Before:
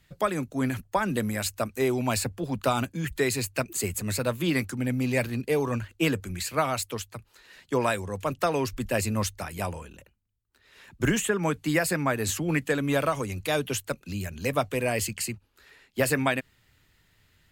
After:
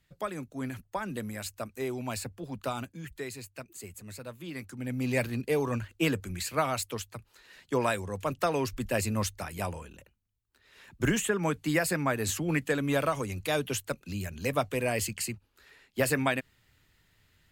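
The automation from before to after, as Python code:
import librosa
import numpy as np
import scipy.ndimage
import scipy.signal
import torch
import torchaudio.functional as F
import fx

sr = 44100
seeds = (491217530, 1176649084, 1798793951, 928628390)

y = fx.gain(x, sr, db=fx.line((2.69, -8.5), (3.51, -15.0), (4.5, -15.0), (5.1, -2.5)))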